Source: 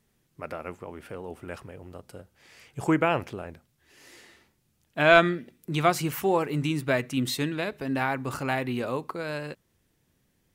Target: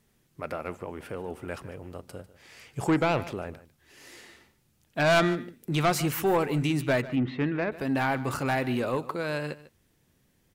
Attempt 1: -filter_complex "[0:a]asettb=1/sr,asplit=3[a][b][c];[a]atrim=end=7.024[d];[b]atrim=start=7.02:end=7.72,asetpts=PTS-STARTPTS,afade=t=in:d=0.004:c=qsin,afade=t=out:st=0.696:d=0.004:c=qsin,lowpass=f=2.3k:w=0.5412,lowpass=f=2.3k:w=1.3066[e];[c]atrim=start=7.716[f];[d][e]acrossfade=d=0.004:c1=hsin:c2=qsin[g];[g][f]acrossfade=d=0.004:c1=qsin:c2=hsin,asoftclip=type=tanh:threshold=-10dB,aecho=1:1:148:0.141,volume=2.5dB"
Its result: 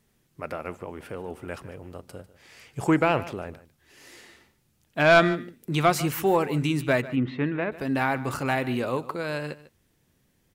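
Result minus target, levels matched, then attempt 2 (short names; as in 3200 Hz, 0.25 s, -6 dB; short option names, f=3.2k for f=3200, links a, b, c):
soft clip: distortion -8 dB
-filter_complex "[0:a]asettb=1/sr,asplit=3[a][b][c];[a]atrim=end=7.024[d];[b]atrim=start=7.02:end=7.72,asetpts=PTS-STARTPTS,afade=t=in:d=0.004:c=qsin,afade=t=out:st=0.696:d=0.004:c=qsin,lowpass=f=2.3k:w=0.5412,lowpass=f=2.3k:w=1.3066[e];[c]atrim=start=7.716[f];[d][e]acrossfade=d=0.004:c1=hsin:c2=qsin[g];[g][f]acrossfade=d=0.004:c1=qsin:c2=hsin,asoftclip=type=tanh:threshold=-20dB,aecho=1:1:148:0.141,volume=2.5dB"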